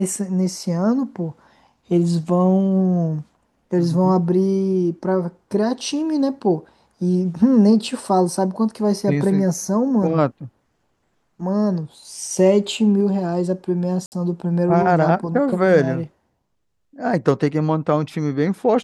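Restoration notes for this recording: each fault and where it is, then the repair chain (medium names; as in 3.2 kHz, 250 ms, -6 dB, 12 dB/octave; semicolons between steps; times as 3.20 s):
14.06–14.12 s: dropout 59 ms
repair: interpolate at 14.06 s, 59 ms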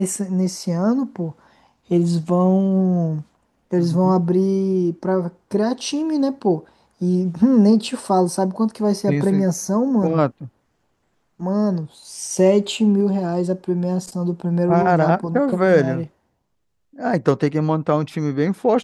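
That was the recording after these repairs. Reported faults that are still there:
nothing left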